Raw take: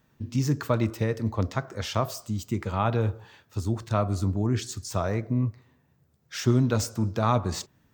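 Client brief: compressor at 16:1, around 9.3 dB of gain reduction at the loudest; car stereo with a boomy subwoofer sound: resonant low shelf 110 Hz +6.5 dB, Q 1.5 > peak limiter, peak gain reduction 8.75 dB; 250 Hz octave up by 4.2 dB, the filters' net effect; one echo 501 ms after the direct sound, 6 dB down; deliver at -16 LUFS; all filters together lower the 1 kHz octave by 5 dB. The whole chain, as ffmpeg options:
-af "equalizer=f=250:t=o:g=6.5,equalizer=f=1000:t=o:g=-7,acompressor=threshold=0.0794:ratio=16,lowshelf=f=110:t=q:w=1.5:g=6.5,aecho=1:1:501:0.501,volume=5.31,alimiter=limit=0.501:level=0:latency=1"

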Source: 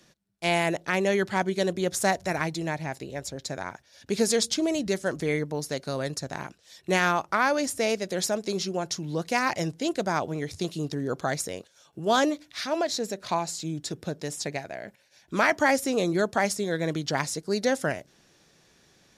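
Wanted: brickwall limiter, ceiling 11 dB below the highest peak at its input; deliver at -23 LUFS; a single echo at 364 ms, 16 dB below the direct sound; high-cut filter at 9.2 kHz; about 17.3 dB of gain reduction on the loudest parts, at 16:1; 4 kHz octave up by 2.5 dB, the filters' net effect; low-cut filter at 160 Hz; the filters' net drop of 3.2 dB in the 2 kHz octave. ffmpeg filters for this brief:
-af "highpass=160,lowpass=9200,equalizer=f=2000:t=o:g=-5,equalizer=f=4000:t=o:g=4.5,acompressor=threshold=0.0158:ratio=16,alimiter=level_in=2.11:limit=0.0631:level=0:latency=1,volume=0.473,aecho=1:1:364:0.158,volume=9.44"

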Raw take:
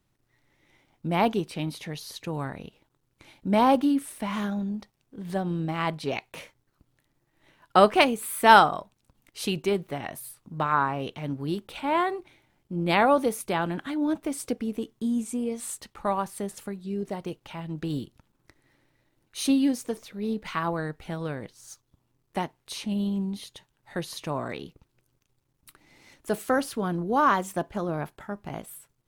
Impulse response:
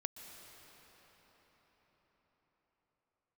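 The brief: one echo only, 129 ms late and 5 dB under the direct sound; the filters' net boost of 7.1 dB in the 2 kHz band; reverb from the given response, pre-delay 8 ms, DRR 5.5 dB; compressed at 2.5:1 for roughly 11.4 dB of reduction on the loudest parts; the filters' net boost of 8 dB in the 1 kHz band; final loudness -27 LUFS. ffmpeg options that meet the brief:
-filter_complex "[0:a]equalizer=f=1000:t=o:g=8.5,equalizer=f=2000:t=o:g=6,acompressor=threshold=0.112:ratio=2.5,aecho=1:1:129:0.562,asplit=2[s0][s1];[1:a]atrim=start_sample=2205,adelay=8[s2];[s1][s2]afir=irnorm=-1:irlink=0,volume=0.631[s3];[s0][s3]amix=inputs=2:normalize=0,volume=0.75"

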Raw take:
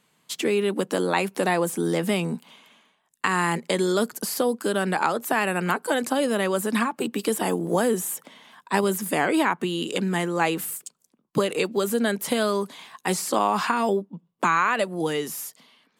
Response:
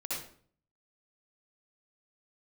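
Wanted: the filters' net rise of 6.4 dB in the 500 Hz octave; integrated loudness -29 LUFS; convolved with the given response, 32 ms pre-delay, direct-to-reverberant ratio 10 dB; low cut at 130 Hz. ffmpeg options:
-filter_complex "[0:a]highpass=130,equalizer=f=500:t=o:g=8,asplit=2[s0][s1];[1:a]atrim=start_sample=2205,adelay=32[s2];[s1][s2]afir=irnorm=-1:irlink=0,volume=0.224[s3];[s0][s3]amix=inputs=2:normalize=0,volume=0.376"

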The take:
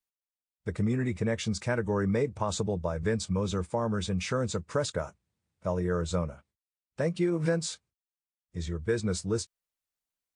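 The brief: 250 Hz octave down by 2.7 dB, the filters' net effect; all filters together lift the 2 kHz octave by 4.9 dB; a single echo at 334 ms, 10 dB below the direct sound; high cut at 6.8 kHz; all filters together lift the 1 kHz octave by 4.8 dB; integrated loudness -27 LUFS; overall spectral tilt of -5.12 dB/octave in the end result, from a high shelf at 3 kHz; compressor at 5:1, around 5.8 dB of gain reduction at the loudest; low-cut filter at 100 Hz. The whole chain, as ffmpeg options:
-af "highpass=100,lowpass=6800,equalizer=f=250:t=o:g=-4,equalizer=f=1000:t=o:g=5,equalizer=f=2000:t=o:g=6.5,highshelf=f=3000:g=-6,acompressor=threshold=0.0316:ratio=5,aecho=1:1:334:0.316,volume=2.82"

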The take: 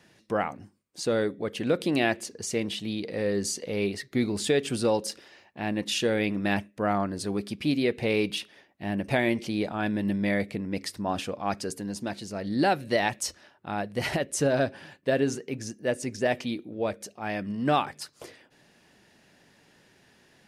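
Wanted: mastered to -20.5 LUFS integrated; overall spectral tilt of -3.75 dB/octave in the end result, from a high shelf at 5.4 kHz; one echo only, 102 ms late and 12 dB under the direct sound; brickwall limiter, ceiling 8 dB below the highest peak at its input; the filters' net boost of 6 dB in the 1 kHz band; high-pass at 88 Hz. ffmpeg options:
-af "highpass=88,equalizer=f=1000:t=o:g=8.5,highshelf=f=5400:g=6.5,alimiter=limit=0.211:level=0:latency=1,aecho=1:1:102:0.251,volume=2.37"

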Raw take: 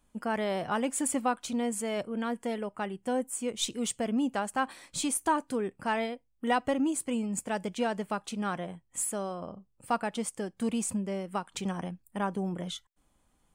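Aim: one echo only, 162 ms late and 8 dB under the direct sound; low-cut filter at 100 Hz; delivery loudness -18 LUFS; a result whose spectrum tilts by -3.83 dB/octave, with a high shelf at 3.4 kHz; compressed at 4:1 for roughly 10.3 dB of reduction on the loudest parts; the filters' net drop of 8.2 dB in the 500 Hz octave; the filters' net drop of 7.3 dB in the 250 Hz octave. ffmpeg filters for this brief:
-af "highpass=100,equalizer=f=250:t=o:g=-6.5,equalizer=f=500:t=o:g=-9,highshelf=f=3400:g=5.5,acompressor=threshold=0.0178:ratio=4,aecho=1:1:162:0.398,volume=10.6"

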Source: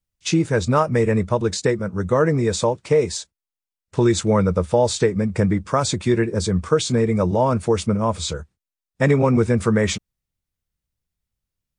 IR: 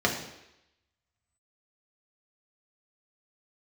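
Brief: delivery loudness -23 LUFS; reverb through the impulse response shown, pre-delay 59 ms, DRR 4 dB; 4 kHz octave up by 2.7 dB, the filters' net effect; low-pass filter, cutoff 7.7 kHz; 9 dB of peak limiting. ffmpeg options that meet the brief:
-filter_complex "[0:a]lowpass=7700,equalizer=f=4000:t=o:g=3.5,alimiter=limit=0.224:level=0:latency=1,asplit=2[s0][s1];[1:a]atrim=start_sample=2205,adelay=59[s2];[s1][s2]afir=irnorm=-1:irlink=0,volume=0.141[s3];[s0][s3]amix=inputs=2:normalize=0,volume=0.75"

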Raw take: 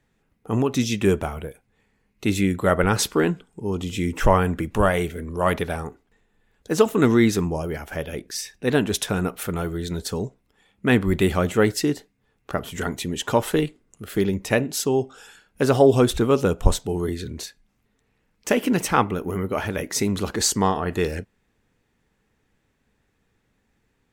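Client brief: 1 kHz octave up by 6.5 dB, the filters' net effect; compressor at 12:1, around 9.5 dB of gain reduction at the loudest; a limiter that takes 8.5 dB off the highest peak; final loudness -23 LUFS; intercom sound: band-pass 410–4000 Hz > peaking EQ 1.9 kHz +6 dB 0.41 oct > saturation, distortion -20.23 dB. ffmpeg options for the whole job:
-af "equalizer=f=1000:t=o:g=8,acompressor=threshold=0.141:ratio=12,alimiter=limit=0.224:level=0:latency=1,highpass=410,lowpass=4000,equalizer=f=1900:t=o:w=0.41:g=6,asoftclip=threshold=0.178,volume=2.24"

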